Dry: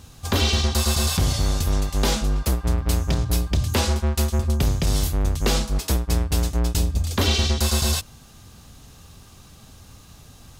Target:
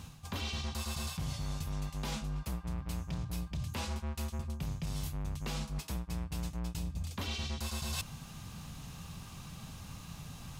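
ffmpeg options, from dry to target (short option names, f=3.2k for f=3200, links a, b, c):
-af "equalizer=f=160:t=o:w=0.67:g=10,equalizer=f=400:t=o:w=0.67:g=-4,equalizer=f=1k:t=o:w=0.67:g=5,equalizer=f=2.5k:t=o:w=0.67:g=5,areverse,acompressor=threshold=-33dB:ratio=6,areverse,volume=-3dB"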